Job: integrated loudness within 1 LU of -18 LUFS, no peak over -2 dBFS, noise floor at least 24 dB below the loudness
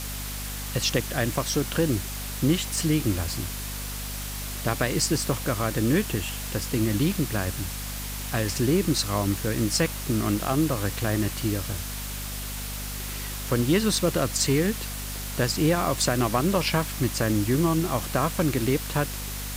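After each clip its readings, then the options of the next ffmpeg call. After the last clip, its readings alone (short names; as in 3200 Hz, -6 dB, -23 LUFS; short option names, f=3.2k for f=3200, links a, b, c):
hum 50 Hz; harmonics up to 250 Hz; hum level -33 dBFS; noise floor -33 dBFS; noise floor target -50 dBFS; loudness -26.0 LUFS; peak -9.0 dBFS; loudness target -18.0 LUFS
-> -af "bandreject=f=50:t=h:w=4,bandreject=f=100:t=h:w=4,bandreject=f=150:t=h:w=4,bandreject=f=200:t=h:w=4,bandreject=f=250:t=h:w=4"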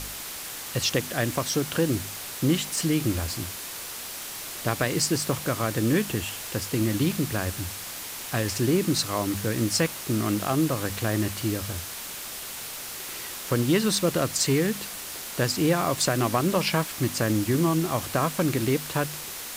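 hum none; noise floor -37 dBFS; noise floor target -51 dBFS
-> -af "afftdn=nr=14:nf=-37"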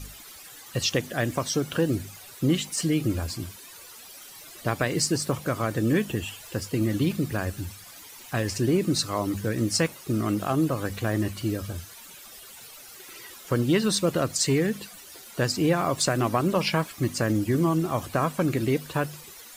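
noise floor -46 dBFS; noise floor target -51 dBFS
-> -af "afftdn=nr=6:nf=-46"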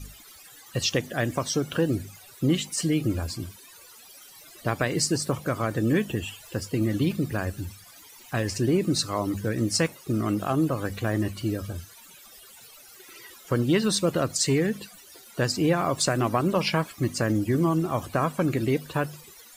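noise floor -50 dBFS; noise floor target -51 dBFS
-> -af "afftdn=nr=6:nf=-50"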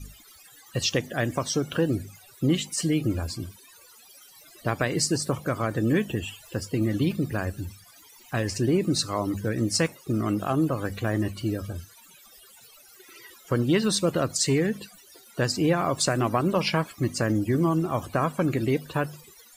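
noise floor -53 dBFS; loudness -26.5 LUFS; peak -9.0 dBFS; loudness target -18.0 LUFS
-> -af "volume=8.5dB,alimiter=limit=-2dB:level=0:latency=1"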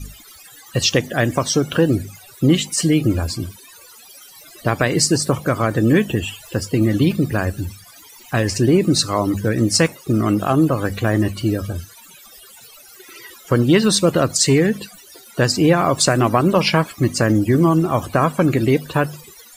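loudness -18.0 LUFS; peak -2.0 dBFS; noise floor -44 dBFS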